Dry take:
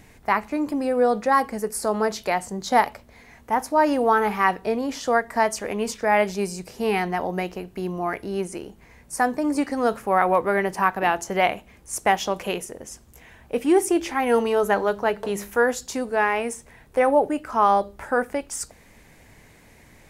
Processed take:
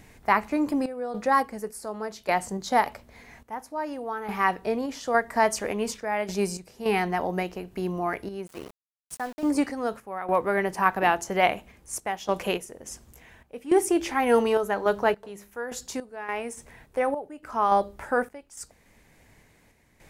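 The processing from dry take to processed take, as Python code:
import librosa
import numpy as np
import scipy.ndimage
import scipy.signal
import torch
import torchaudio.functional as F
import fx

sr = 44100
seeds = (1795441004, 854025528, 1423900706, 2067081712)

y = fx.tremolo_random(x, sr, seeds[0], hz=3.5, depth_pct=85)
y = fx.sample_gate(y, sr, floor_db=-40.0, at=(8.46, 9.5), fade=0.02)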